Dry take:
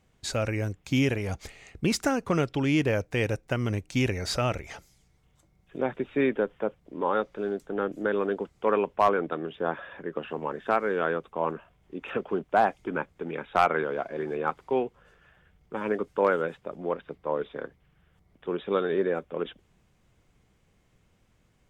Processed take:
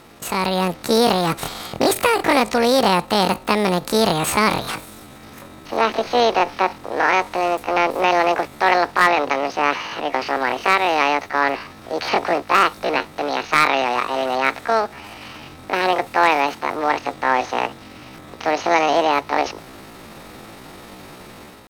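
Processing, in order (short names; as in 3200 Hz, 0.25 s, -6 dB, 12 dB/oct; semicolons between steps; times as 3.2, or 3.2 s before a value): per-bin compression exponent 0.6; pitch shift +9.5 st; AGC gain up to 7 dB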